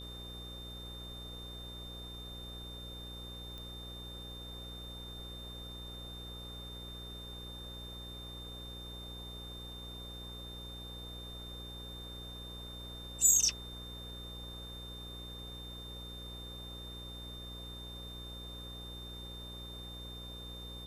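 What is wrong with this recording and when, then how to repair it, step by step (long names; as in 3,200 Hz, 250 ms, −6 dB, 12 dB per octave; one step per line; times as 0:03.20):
mains buzz 60 Hz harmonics 9 −48 dBFS
whistle 3,600 Hz −47 dBFS
0:03.58: click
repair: click removal
hum removal 60 Hz, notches 9
notch filter 3,600 Hz, Q 30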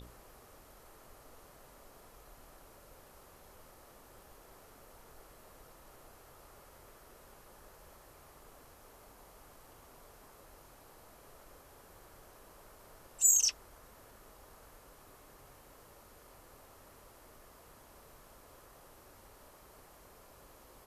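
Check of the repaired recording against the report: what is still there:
none of them is left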